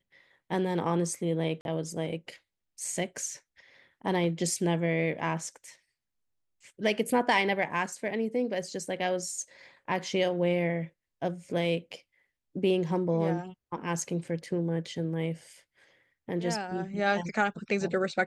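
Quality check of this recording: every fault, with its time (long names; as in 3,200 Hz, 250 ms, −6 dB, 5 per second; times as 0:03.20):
0:01.61–0:01.65: drop-out 41 ms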